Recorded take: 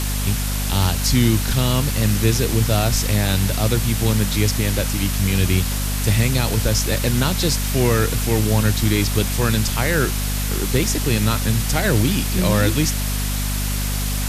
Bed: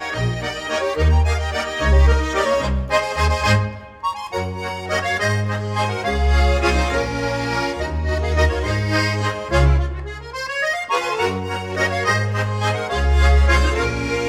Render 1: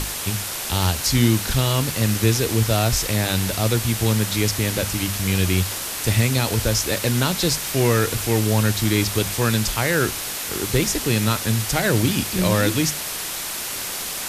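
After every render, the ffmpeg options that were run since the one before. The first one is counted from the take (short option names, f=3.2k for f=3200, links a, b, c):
-af "bandreject=f=50:t=h:w=6,bandreject=f=100:t=h:w=6,bandreject=f=150:t=h:w=6,bandreject=f=200:t=h:w=6,bandreject=f=250:t=h:w=6"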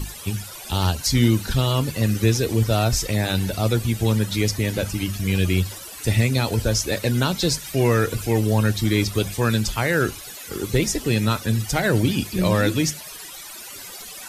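-af "afftdn=nr=16:nf=-29"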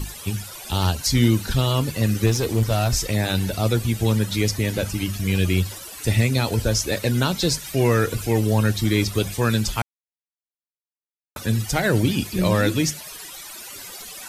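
-filter_complex "[0:a]asettb=1/sr,asplit=3[a][b][c];[a]atrim=end=2.264[d];[b]atrim=start=2.26:end=2.94,asetpts=PTS-STARTPTS,afade=t=in:d=0.004:c=qsin,afade=t=out:st=0.676:d=0.004:c=qsin,aeval=exprs='clip(val(0),-1,0.133)':c=same[e];[c]atrim=start=2.936[f];[d][e]acrossfade=d=0.004:c1=hsin:c2=qsin[g];[g][f]acrossfade=d=0.004:c1=qsin:c2=hsin,asplit=3[h][i][j];[h]atrim=end=9.82,asetpts=PTS-STARTPTS,afade=t=out:st=9.816:d=0.004:c=hsin[k];[i]atrim=start=9.82:end=11.36,asetpts=PTS-STARTPTS,volume=0[l];[j]atrim=start=11.36,asetpts=PTS-STARTPTS,afade=t=in:d=0.004:c=hsin[m];[k][l][m]concat=n=3:v=0:a=1"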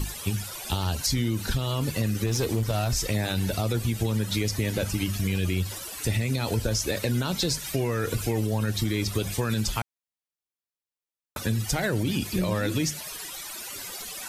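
-af "alimiter=limit=-13dB:level=0:latency=1:release=38,acompressor=threshold=-22dB:ratio=6"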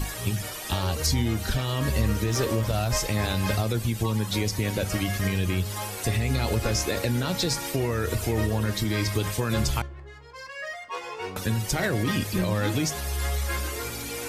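-filter_complex "[1:a]volume=-14.5dB[a];[0:a][a]amix=inputs=2:normalize=0"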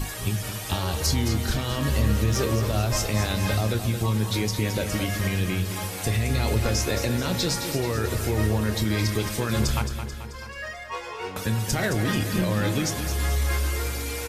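-filter_complex "[0:a]asplit=2[a][b];[b]adelay=28,volume=-12dB[c];[a][c]amix=inputs=2:normalize=0,asplit=2[d][e];[e]aecho=0:1:218|436|654|872|1090|1308|1526:0.355|0.199|0.111|0.0623|0.0349|0.0195|0.0109[f];[d][f]amix=inputs=2:normalize=0"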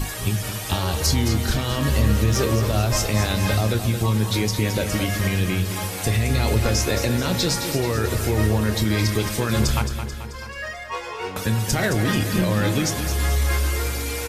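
-af "volume=3.5dB"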